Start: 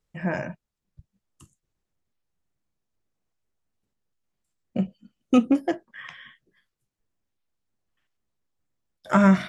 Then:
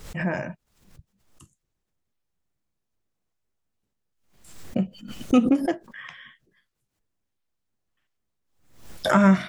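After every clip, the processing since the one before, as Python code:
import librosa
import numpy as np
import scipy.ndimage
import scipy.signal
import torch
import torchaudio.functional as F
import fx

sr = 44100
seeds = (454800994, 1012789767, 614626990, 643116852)

y = fx.pre_swell(x, sr, db_per_s=85.0)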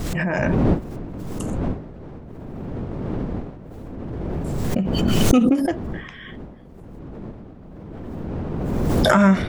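y = fx.dmg_wind(x, sr, seeds[0], corner_hz=270.0, level_db=-33.0)
y = fx.pre_swell(y, sr, db_per_s=20.0)
y = F.gain(torch.from_numpy(y), 1.0).numpy()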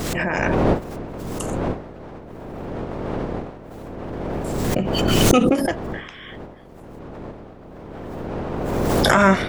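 y = fx.spec_clip(x, sr, under_db=13)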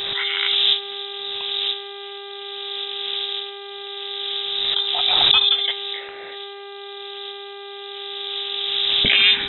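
y = fx.freq_invert(x, sr, carrier_hz=3800)
y = fx.dmg_buzz(y, sr, base_hz=400.0, harmonics=10, level_db=-36.0, tilt_db=-6, odd_only=False)
y = F.gain(torch.from_numpy(y), -1.0).numpy()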